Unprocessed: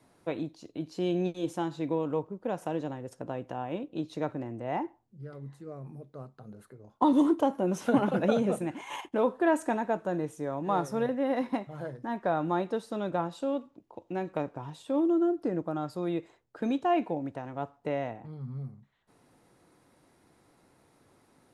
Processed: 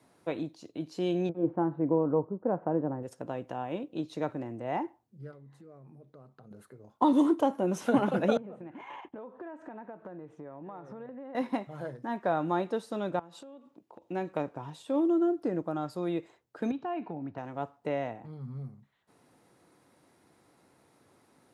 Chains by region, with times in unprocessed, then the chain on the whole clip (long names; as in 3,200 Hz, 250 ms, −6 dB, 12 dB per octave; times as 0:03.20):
0:01.29–0:03.03: low-pass filter 1,600 Hz 24 dB per octave + tilt shelving filter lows +5 dB, about 1,200 Hz
0:05.31–0:06.51: high-shelf EQ 5,300 Hz −7 dB + downward compressor 4 to 1, threshold −49 dBFS
0:08.37–0:11.35: low-pass filter 1,900 Hz + downward compressor 12 to 1, threshold −39 dBFS
0:13.19–0:14.03: high-pass filter 130 Hz + downward compressor 16 to 1, threshold −44 dBFS
0:16.71–0:17.38: downward compressor 2.5 to 1, threshold −33 dBFS + loudspeaker in its box 100–4,400 Hz, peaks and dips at 100 Hz +8 dB, 160 Hz +5 dB, 530 Hz −9 dB, 2,100 Hz −4 dB, 3,400 Hz −9 dB
whole clip: high-pass filter 53 Hz; low-shelf EQ 89 Hz −6 dB